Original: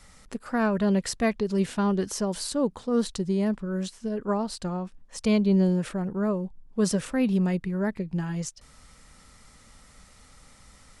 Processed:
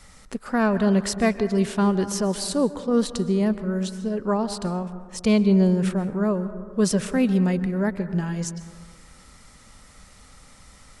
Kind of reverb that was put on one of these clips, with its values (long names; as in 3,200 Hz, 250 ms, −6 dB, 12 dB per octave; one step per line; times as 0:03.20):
dense smooth reverb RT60 1.7 s, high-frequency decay 0.25×, pre-delay 115 ms, DRR 12.5 dB
level +3.5 dB